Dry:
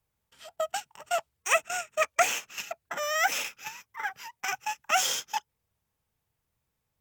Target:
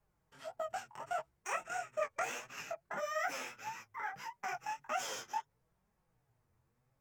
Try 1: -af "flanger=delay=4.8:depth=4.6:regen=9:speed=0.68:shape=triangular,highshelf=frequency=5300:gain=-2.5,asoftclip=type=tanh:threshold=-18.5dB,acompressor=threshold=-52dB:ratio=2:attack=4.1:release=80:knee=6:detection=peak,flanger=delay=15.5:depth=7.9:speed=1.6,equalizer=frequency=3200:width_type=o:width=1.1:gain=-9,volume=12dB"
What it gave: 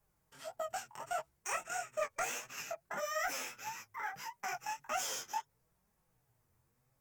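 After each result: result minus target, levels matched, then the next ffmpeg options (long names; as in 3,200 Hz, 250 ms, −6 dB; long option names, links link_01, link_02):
soft clipping: distortion +19 dB; 8,000 Hz band +5.0 dB
-af "flanger=delay=4.8:depth=4.6:regen=9:speed=0.68:shape=triangular,highshelf=frequency=5300:gain=-2.5,asoftclip=type=tanh:threshold=-8dB,acompressor=threshold=-52dB:ratio=2:attack=4.1:release=80:knee=6:detection=peak,flanger=delay=15.5:depth=7.9:speed=1.6,equalizer=frequency=3200:width_type=o:width=1.1:gain=-9,volume=12dB"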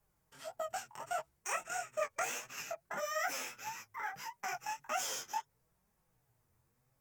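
8,000 Hz band +5.0 dB
-af "flanger=delay=4.8:depth=4.6:regen=9:speed=0.68:shape=triangular,highshelf=frequency=5300:gain=-14.5,asoftclip=type=tanh:threshold=-8dB,acompressor=threshold=-52dB:ratio=2:attack=4.1:release=80:knee=6:detection=peak,flanger=delay=15.5:depth=7.9:speed=1.6,equalizer=frequency=3200:width_type=o:width=1.1:gain=-9,volume=12dB"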